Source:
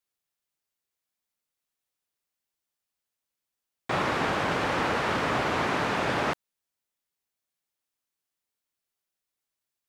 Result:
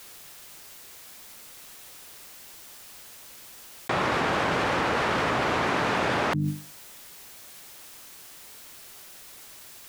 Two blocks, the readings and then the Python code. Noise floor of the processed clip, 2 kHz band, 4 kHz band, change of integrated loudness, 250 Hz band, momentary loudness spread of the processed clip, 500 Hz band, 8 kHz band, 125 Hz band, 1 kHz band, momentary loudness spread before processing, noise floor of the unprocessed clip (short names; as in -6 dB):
-47 dBFS, +2.0 dB, +2.0 dB, +1.5 dB, +2.0 dB, 19 LU, +1.5 dB, +6.0 dB, +3.5 dB, +2.0 dB, 5 LU, under -85 dBFS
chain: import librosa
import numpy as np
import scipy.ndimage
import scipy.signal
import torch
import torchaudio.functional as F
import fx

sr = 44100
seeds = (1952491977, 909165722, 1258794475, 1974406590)

y = fx.hum_notches(x, sr, base_hz=50, count=6)
y = fx.env_flatten(y, sr, amount_pct=100)